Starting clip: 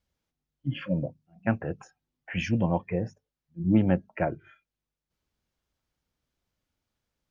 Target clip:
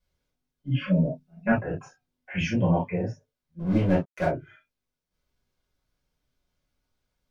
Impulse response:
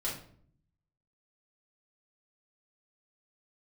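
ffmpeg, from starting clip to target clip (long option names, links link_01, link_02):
-filter_complex "[0:a]asettb=1/sr,asplit=3[link_01][link_02][link_03];[link_01]atrim=end=0.794[link_04];[link_02]atrim=start=0.79:end=1.52,asetpts=PTS-STARTPTS,afade=type=in:duration=0.004:curve=qsin,afade=type=out:start_time=0.726:duration=0.004:curve=qsin,aecho=1:1:4.7:0.86,atrim=end_sample=32193[link_05];[link_03]atrim=start=1.516[link_06];[link_04][link_05]acrossfade=duration=0.004:curve1=hsin:curve2=qsin[link_07];[link_07][link_06]acrossfade=duration=0.004:curve1=qsin:curve2=hsin,asettb=1/sr,asplit=3[link_08][link_09][link_10];[link_08]atrim=end=3.594[link_11];[link_09]atrim=start=3.59:end=4.25,asetpts=PTS-STARTPTS,afade=type=in:duration=0.004:curve=qsin,afade=type=out:start_time=0.656:duration=0.004:curve=qsin,aeval=exprs='sgn(val(0))*max(abs(val(0))-0.0141,0)':channel_layout=same[link_12];[link_10]atrim=start=4.246[link_13];[link_11][link_12]acrossfade=duration=0.004:curve1=hsin:curve2=qsin[link_14];[link_14][link_13]acrossfade=duration=0.004:curve1=qsin:curve2=hsin[link_15];[1:a]atrim=start_sample=2205,atrim=end_sample=3528,asetrate=48510,aresample=44100[link_16];[link_15][link_16]afir=irnorm=-1:irlink=0"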